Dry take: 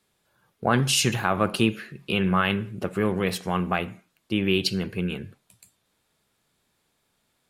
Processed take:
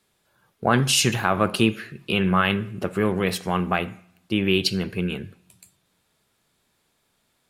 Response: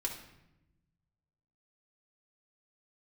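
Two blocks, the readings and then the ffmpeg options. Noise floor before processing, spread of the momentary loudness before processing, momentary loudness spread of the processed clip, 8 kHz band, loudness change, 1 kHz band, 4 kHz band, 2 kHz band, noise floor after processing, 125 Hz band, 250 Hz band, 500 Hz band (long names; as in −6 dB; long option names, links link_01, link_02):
−73 dBFS, 10 LU, 10 LU, +2.5 dB, +2.0 dB, +2.5 dB, +2.5 dB, +2.5 dB, −70 dBFS, +1.5 dB, +2.0 dB, +2.0 dB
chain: -filter_complex "[0:a]asplit=2[link_01][link_02];[1:a]atrim=start_sample=2205,lowshelf=frequency=350:gain=-10[link_03];[link_02][link_03]afir=irnorm=-1:irlink=0,volume=-16.5dB[link_04];[link_01][link_04]amix=inputs=2:normalize=0,volume=1.5dB"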